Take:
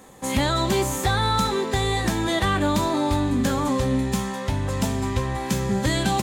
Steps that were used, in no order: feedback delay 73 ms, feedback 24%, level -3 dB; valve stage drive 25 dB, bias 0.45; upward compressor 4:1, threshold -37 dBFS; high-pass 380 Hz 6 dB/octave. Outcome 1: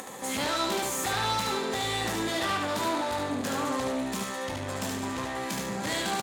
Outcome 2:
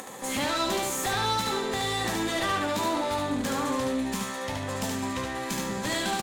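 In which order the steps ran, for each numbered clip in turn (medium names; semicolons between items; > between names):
valve stage > high-pass > upward compressor > feedback delay; high-pass > valve stage > upward compressor > feedback delay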